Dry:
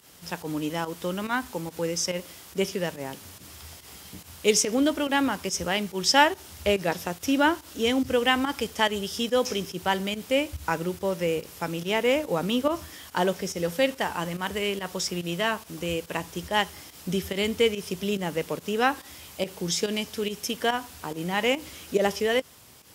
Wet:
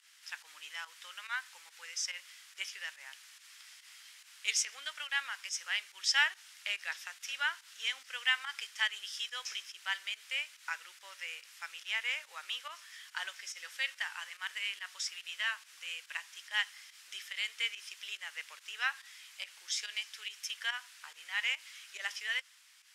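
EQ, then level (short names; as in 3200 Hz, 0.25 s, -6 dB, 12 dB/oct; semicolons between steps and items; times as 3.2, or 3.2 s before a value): ladder high-pass 1400 Hz, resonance 35%; LPF 8900 Hz 12 dB/oct; 0.0 dB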